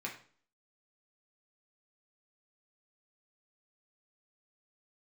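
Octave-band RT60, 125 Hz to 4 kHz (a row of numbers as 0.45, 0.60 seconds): 0.50, 0.55, 0.45, 0.45, 0.40, 0.40 seconds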